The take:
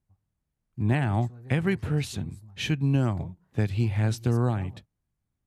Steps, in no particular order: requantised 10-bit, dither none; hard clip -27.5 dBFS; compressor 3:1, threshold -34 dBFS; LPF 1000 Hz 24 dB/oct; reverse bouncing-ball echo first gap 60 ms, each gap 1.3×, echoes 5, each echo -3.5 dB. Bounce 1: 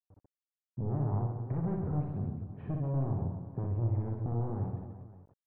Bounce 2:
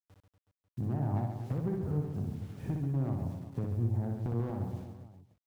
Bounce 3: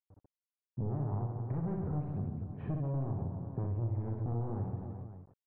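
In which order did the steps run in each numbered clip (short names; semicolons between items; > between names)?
hard clip > compressor > reverse bouncing-ball echo > requantised > LPF; LPF > requantised > compressor > hard clip > reverse bouncing-ball echo; hard clip > reverse bouncing-ball echo > requantised > LPF > compressor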